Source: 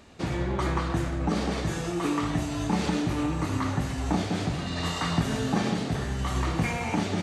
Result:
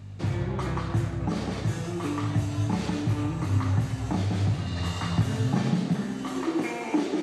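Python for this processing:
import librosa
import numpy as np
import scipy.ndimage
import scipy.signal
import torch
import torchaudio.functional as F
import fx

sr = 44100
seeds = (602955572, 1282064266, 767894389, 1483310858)

y = fx.add_hum(x, sr, base_hz=50, snr_db=14)
y = fx.filter_sweep_highpass(y, sr, from_hz=100.0, to_hz=320.0, start_s=5.34, end_s=6.49, q=4.8)
y = y * 10.0 ** (-4.0 / 20.0)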